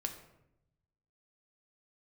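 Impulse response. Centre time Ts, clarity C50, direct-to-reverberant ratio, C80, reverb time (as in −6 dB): 16 ms, 9.5 dB, 4.5 dB, 11.5 dB, 0.80 s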